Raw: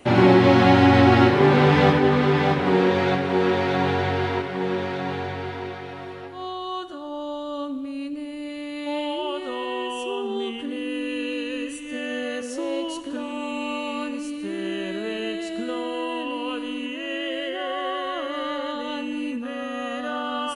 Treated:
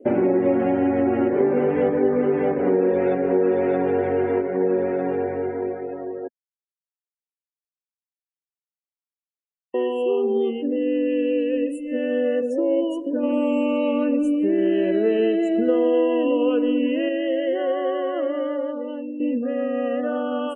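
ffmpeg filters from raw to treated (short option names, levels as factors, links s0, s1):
-filter_complex "[0:a]asettb=1/sr,asplit=3[s0][s1][s2];[s0]atrim=end=13.234[s3];[s1]atrim=start=13.23:end=17.09,asetpts=PTS-STARTPTS,afade=t=in:d=0.004:c=qsin,afade=t=out:st=3.856:d=0.004:c=qsin,acontrast=37[s4];[s2]atrim=start=17.086[s5];[s3][s4]acrossfade=d=0.004:c1=hsin:c2=qsin[s6];[s6][s5]acrossfade=d=0.004:c1=qsin:c2=hsin,asplit=4[s7][s8][s9][s10];[s7]atrim=end=6.28,asetpts=PTS-STARTPTS,afade=t=out:st=6.276:d=0.004:c=hsin[s11];[s8]atrim=start=6.28:end=9.74,asetpts=PTS-STARTPTS,volume=0[s12];[s9]atrim=start=9.74:end=19.2,asetpts=PTS-STARTPTS,afade=t=in:d=0.004:c=hsin,afade=t=out:st=8.34:d=1.12:silence=0.334965[s13];[s10]atrim=start=19.2,asetpts=PTS-STARTPTS,afade=t=in:d=0.004:c=hsin:silence=0.334965[s14];[s11][s12][s13][s14]concat=n=4:v=0:a=1,acompressor=threshold=0.0794:ratio=6,equalizer=f=125:t=o:w=1:g=-11,equalizer=f=250:t=o:w=1:g=6,equalizer=f=500:t=o:w=1:g=11,equalizer=f=1000:t=o:w=1:g=-7,equalizer=f=4000:t=o:w=1:g=-10,afftdn=nr=26:nf=-38"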